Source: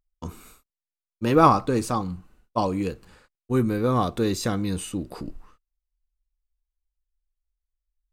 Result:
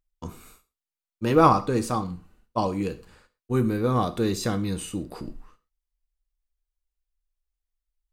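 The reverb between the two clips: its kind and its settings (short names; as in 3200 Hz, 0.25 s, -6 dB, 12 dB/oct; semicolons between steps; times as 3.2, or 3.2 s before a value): non-linear reverb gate 0.15 s falling, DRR 10.5 dB; gain -1.5 dB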